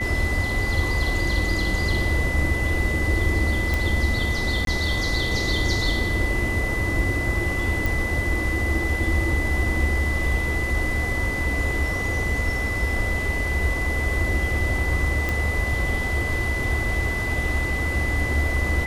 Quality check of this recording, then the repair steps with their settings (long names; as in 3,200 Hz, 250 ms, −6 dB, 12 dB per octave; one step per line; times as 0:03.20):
whistle 2,000 Hz −26 dBFS
0:03.74: click
0:04.65–0:04.67: drop-out 22 ms
0:07.86: click
0:15.29: click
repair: click removal
notch filter 2,000 Hz, Q 30
repair the gap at 0:04.65, 22 ms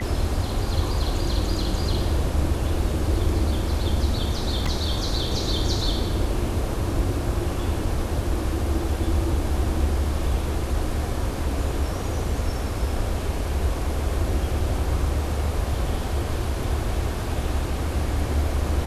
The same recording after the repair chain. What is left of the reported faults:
none of them is left